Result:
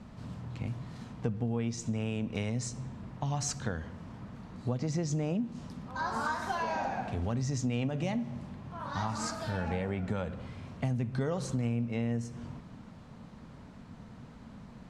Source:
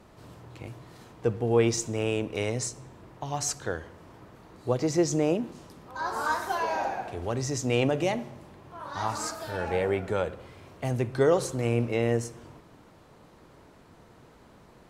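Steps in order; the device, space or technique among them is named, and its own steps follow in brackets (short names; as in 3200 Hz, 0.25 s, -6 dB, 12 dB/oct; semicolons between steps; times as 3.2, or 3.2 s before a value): jukebox (LPF 7400 Hz 12 dB/oct; resonant low shelf 280 Hz +6 dB, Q 3; compressor 6:1, threshold -29 dBFS, peak gain reduction 14 dB)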